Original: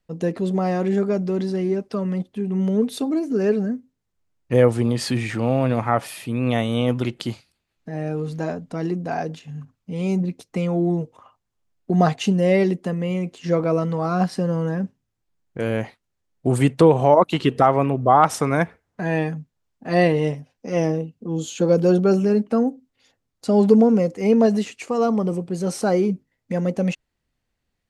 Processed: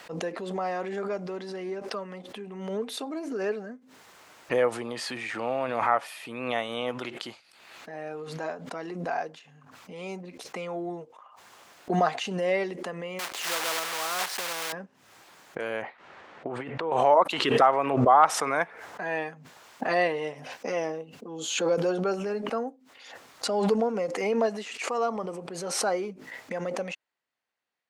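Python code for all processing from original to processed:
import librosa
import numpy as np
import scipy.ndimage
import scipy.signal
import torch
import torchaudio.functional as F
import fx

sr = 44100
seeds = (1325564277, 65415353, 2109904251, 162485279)

y = fx.chain(x, sr, fx.block_float(bits=3),
    fx.bass_treble(bass_db=-8, treble_db=2),
    fx.spectral_comp(ratio=2.0), at=(13.19, 14.73))
y = fx.chain(y, sr, fx.lowpass(hz=2300.0, slope=12),
    fx.over_compress(threshold_db=-22.0, ratio=-1.0), at=(15.82, 16.92))
y = scipy.signal.sosfilt(scipy.signal.butter(2, 930.0, 'highpass', fs=sr, output='sos'), y)
y = fx.tilt_eq(y, sr, slope=-3.0)
y = fx.pre_swell(y, sr, db_per_s=48.0)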